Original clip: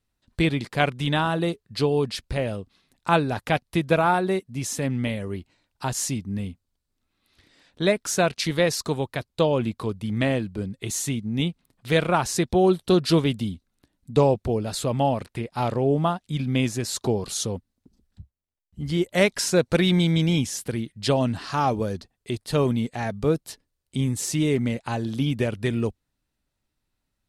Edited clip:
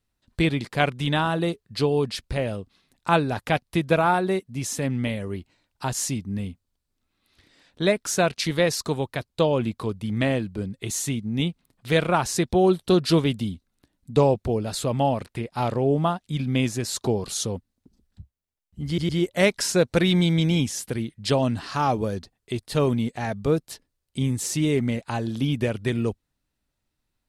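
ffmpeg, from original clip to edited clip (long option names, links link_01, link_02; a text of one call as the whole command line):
ffmpeg -i in.wav -filter_complex "[0:a]asplit=3[link_01][link_02][link_03];[link_01]atrim=end=18.982[link_04];[link_02]atrim=start=18.868:end=18.982[link_05];[link_03]atrim=start=18.868[link_06];[link_04][link_05]acrossfade=duration=0.004:curve1=hsin:curve2=hsin[link_07];[link_07][link_06]acrossfade=duration=0.004:curve1=hsin:curve2=hsin" out.wav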